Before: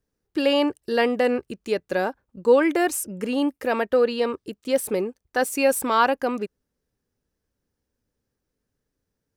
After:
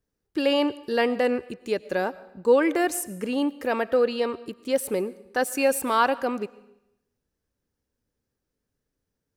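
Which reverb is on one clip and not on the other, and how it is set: digital reverb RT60 0.85 s, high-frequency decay 0.95×, pre-delay 65 ms, DRR 18.5 dB; gain -2 dB

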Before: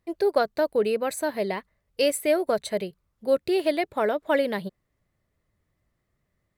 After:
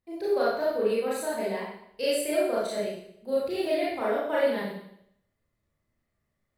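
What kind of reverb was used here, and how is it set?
Schroeder reverb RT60 0.71 s, combs from 27 ms, DRR -8 dB; gain -11.5 dB

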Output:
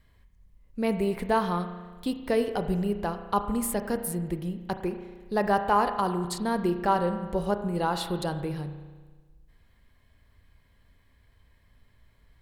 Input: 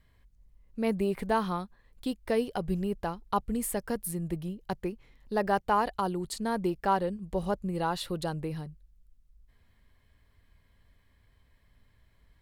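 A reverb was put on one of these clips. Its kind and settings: spring tank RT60 1.4 s, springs 34 ms, chirp 55 ms, DRR 8 dB; gain +2.5 dB

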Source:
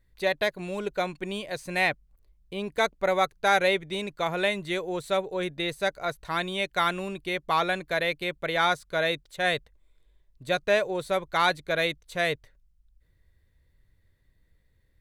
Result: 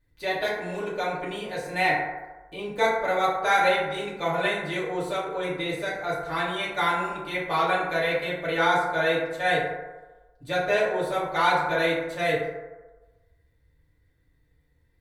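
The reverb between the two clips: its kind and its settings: FDN reverb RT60 1.2 s, low-frequency decay 0.75×, high-frequency decay 0.35×, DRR -8.5 dB; gain -7 dB

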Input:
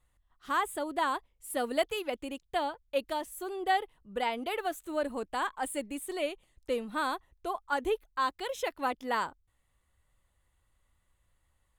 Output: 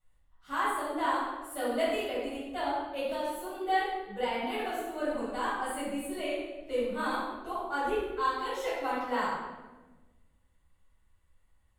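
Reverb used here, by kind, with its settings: shoebox room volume 720 m³, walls mixed, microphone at 7.3 m; gain -13.5 dB

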